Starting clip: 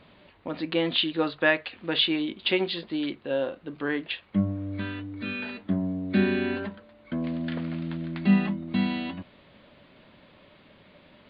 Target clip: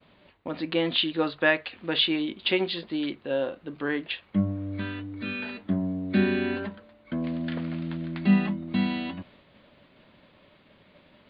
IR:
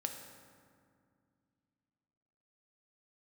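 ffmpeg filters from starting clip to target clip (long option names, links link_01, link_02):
-af "agate=range=-33dB:threshold=-51dB:ratio=3:detection=peak"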